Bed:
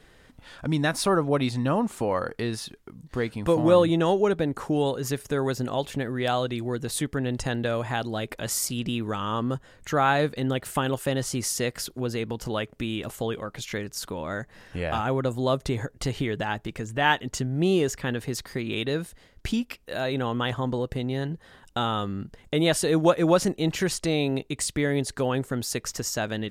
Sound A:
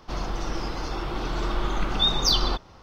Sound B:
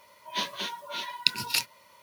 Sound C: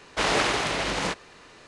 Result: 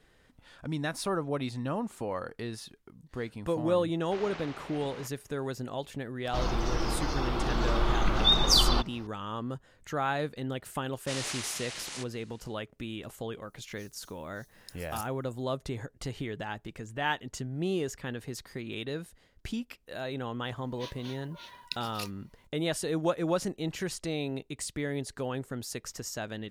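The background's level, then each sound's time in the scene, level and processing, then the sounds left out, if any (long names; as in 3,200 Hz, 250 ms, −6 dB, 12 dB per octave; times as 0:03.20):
bed −8.5 dB
0:03.94: mix in C −18 dB + high-frequency loss of the air 130 metres
0:06.25: mix in A −0.5 dB
0:10.90: mix in C −3.5 dB, fades 0.10 s + first-order pre-emphasis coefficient 0.9
0:13.42: mix in B −10 dB + inverse Chebyshev high-pass filter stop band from 2,100 Hz, stop band 60 dB
0:20.45: mix in B −13.5 dB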